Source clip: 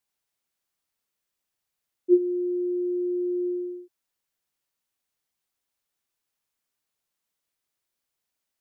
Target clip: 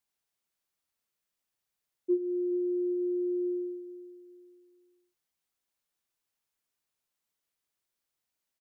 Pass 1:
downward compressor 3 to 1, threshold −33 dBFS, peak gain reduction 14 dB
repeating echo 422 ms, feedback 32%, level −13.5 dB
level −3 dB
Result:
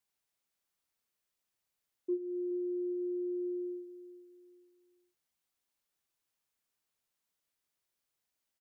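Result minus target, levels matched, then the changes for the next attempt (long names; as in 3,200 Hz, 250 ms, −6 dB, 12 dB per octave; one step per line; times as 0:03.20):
downward compressor: peak gain reduction +6.5 dB
change: downward compressor 3 to 1, threshold −23 dBFS, peak gain reduction 7.5 dB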